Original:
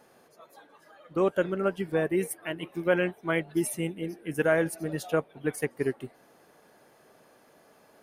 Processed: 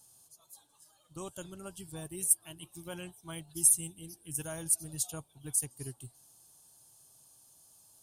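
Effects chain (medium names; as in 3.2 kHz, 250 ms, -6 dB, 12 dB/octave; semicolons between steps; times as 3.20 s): FFT filter 120 Hz 0 dB, 210 Hz -17 dB, 310 Hz -16 dB, 480 Hz -24 dB, 920 Hz -12 dB, 2 kHz -25 dB, 3.1 kHz -5 dB, 5.5 kHz +4 dB, 8.2 kHz +15 dB, 15 kHz +5 dB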